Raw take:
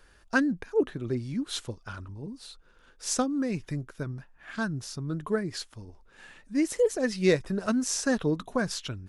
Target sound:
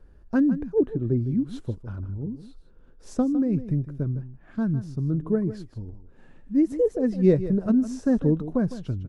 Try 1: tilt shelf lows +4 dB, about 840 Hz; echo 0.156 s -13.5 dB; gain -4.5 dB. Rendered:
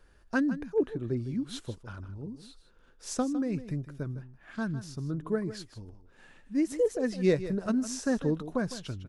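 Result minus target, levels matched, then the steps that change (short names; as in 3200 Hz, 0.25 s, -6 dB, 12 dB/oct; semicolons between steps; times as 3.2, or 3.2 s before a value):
1000 Hz band +7.0 dB
change: tilt shelf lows +14 dB, about 840 Hz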